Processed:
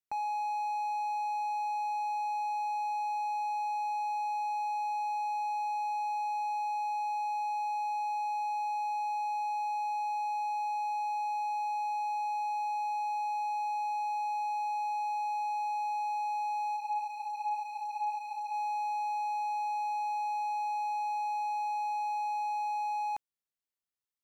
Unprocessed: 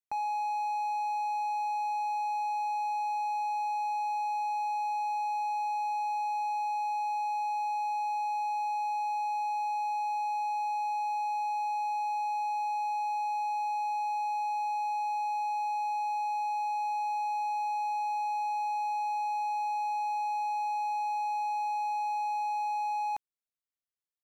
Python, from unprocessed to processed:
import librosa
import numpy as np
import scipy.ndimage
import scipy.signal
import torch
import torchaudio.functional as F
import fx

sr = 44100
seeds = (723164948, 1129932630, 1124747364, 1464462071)

y = fx.ensemble(x, sr, at=(16.76, 18.52), fade=0.02)
y = y * 10.0 ** (-1.5 / 20.0)